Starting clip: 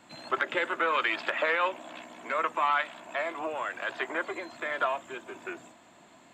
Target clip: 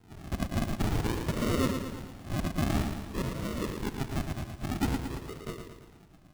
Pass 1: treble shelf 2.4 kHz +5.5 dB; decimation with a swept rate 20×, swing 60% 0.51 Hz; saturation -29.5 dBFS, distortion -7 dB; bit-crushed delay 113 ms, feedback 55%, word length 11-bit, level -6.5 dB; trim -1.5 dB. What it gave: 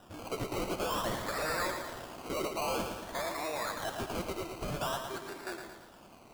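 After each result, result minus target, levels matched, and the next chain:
decimation with a swept rate: distortion -35 dB; saturation: distortion +10 dB
treble shelf 2.4 kHz +5.5 dB; decimation with a swept rate 75×, swing 60% 0.51 Hz; saturation -29.5 dBFS, distortion -7 dB; bit-crushed delay 113 ms, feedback 55%, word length 11-bit, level -6.5 dB; trim -1.5 dB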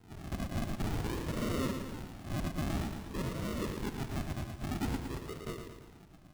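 saturation: distortion +10 dB
treble shelf 2.4 kHz +5.5 dB; decimation with a swept rate 75×, swing 60% 0.51 Hz; saturation -18.5 dBFS, distortion -17 dB; bit-crushed delay 113 ms, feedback 55%, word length 11-bit, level -6.5 dB; trim -1.5 dB

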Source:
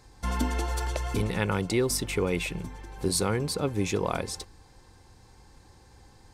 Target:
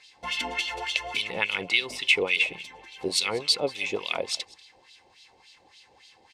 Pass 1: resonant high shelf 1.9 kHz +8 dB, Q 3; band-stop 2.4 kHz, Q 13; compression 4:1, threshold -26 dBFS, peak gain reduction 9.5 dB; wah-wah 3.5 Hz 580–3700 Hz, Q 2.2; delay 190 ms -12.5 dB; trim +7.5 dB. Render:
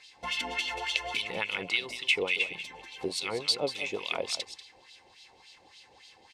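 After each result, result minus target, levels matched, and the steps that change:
compression: peak gain reduction +9.5 dB; echo-to-direct +9.5 dB
remove: compression 4:1, threshold -26 dBFS, peak gain reduction 9.5 dB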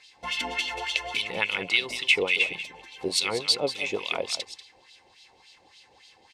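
echo-to-direct +9.5 dB
change: delay 190 ms -22 dB

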